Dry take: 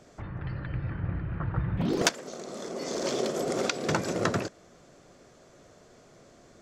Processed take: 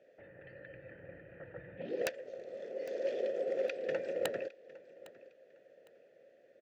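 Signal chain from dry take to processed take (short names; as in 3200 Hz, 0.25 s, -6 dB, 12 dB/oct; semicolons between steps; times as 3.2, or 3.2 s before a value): vowel filter e; high shelf 7500 Hz -11.5 dB; wrapped overs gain 23.5 dB; on a send: feedback echo 0.807 s, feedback 28%, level -19.5 dB; on the sum: gain +2 dB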